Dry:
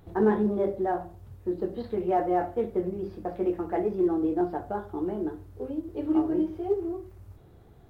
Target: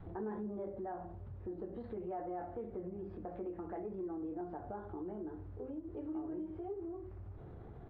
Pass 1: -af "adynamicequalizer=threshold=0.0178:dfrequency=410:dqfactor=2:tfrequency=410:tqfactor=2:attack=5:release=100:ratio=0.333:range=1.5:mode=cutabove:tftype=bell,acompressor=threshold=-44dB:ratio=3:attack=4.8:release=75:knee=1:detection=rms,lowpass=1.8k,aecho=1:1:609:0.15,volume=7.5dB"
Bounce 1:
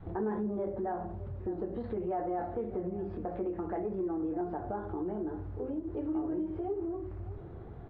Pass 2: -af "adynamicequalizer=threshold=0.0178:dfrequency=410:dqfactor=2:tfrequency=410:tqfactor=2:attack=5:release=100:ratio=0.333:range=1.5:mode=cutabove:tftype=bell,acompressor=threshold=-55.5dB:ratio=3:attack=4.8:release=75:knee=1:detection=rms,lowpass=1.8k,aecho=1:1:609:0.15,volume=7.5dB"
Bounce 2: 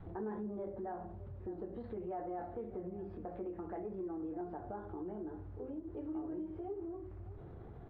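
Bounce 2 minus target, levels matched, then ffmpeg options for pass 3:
echo-to-direct +9 dB
-af "adynamicequalizer=threshold=0.0178:dfrequency=410:dqfactor=2:tfrequency=410:tqfactor=2:attack=5:release=100:ratio=0.333:range=1.5:mode=cutabove:tftype=bell,acompressor=threshold=-55.5dB:ratio=3:attack=4.8:release=75:knee=1:detection=rms,lowpass=1.8k,aecho=1:1:609:0.0531,volume=7.5dB"

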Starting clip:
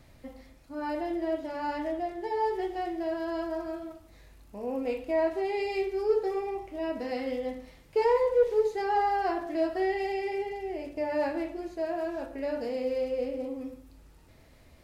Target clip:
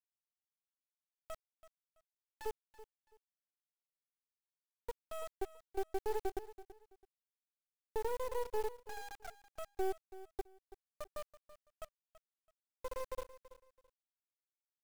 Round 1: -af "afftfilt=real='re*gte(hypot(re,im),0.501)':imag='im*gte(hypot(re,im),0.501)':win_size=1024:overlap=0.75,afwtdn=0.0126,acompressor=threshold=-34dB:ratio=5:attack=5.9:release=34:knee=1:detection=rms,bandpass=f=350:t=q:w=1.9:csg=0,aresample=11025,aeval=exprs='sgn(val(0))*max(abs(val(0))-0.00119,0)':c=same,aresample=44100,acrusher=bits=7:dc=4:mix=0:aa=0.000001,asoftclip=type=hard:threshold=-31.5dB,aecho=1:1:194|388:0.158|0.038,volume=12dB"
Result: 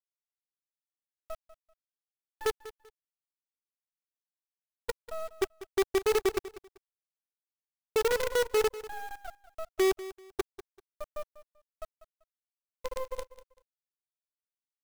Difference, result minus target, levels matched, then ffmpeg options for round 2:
echo 0.137 s early; compressor: peak gain reduction -5.5 dB
-af "afftfilt=real='re*gte(hypot(re,im),0.501)':imag='im*gte(hypot(re,im),0.501)':win_size=1024:overlap=0.75,afwtdn=0.0126,acompressor=threshold=-41dB:ratio=5:attack=5.9:release=34:knee=1:detection=rms,bandpass=f=350:t=q:w=1.9:csg=0,aresample=11025,aeval=exprs='sgn(val(0))*max(abs(val(0))-0.00119,0)':c=same,aresample=44100,acrusher=bits=7:dc=4:mix=0:aa=0.000001,asoftclip=type=hard:threshold=-31.5dB,aecho=1:1:331|662:0.158|0.038,volume=12dB"

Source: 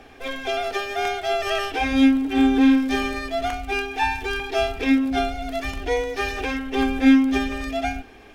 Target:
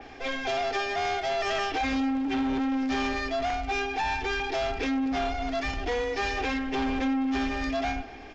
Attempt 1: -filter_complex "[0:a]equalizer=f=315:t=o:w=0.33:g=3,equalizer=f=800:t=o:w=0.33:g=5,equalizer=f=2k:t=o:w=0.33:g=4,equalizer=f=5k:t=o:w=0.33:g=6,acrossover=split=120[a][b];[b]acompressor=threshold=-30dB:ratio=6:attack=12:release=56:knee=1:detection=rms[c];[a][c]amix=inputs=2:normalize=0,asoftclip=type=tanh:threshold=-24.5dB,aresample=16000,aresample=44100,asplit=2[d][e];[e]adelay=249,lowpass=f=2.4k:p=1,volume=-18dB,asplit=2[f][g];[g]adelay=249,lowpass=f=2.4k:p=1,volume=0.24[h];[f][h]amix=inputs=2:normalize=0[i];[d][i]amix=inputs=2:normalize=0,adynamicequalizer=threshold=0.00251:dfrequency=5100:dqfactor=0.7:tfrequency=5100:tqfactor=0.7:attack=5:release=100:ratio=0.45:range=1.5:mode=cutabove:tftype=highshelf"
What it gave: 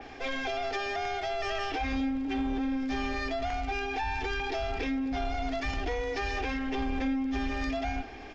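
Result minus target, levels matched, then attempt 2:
compressor: peak gain reduction +8.5 dB
-filter_complex "[0:a]equalizer=f=315:t=o:w=0.33:g=3,equalizer=f=800:t=o:w=0.33:g=5,equalizer=f=2k:t=o:w=0.33:g=4,equalizer=f=5k:t=o:w=0.33:g=6,acrossover=split=120[a][b];[b]acompressor=threshold=-20dB:ratio=6:attack=12:release=56:knee=1:detection=rms[c];[a][c]amix=inputs=2:normalize=0,asoftclip=type=tanh:threshold=-24.5dB,aresample=16000,aresample=44100,asplit=2[d][e];[e]adelay=249,lowpass=f=2.4k:p=1,volume=-18dB,asplit=2[f][g];[g]adelay=249,lowpass=f=2.4k:p=1,volume=0.24[h];[f][h]amix=inputs=2:normalize=0[i];[d][i]amix=inputs=2:normalize=0,adynamicequalizer=threshold=0.00251:dfrequency=5100:dqfactor=0.7:tfrequency=5100:tqfactor=0.7:attack=5:release=100:ratio=0.45:range=1.5:mode=cutabove:tftype=highshelf"

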